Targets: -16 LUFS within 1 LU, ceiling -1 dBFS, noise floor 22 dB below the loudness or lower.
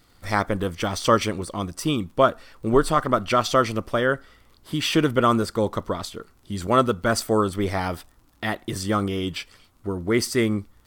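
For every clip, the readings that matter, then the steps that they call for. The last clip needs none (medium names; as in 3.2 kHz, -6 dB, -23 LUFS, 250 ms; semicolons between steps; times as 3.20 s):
tick rate 23 per s; loudness -23.5 LUFS; peak level -4.0 dBFS; loudness target -16.0 LUFS
-> de-click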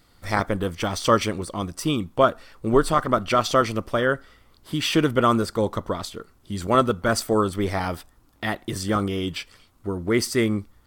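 tick rate 0.83 per s; loudness -23.5 LUFS; peak level -4.5 dBFS; loudness target -16.0 LUFS
-> trim +7.5 dB; peak limiter -1 dBFS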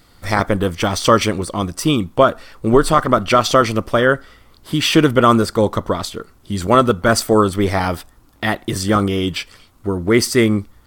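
loudness -16.5 LUFS; peak level -1.0 dBFS; noise floor -51 dBFS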